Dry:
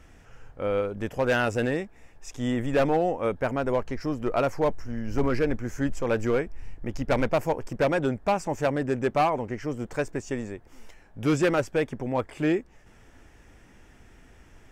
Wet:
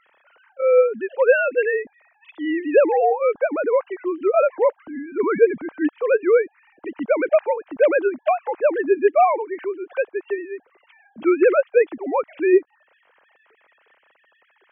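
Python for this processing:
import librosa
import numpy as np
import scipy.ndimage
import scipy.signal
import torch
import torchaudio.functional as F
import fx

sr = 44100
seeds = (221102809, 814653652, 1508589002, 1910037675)

y = fx.sine_speech(x, sr)
y = y * 10.0 ** (6.5 / 20.0)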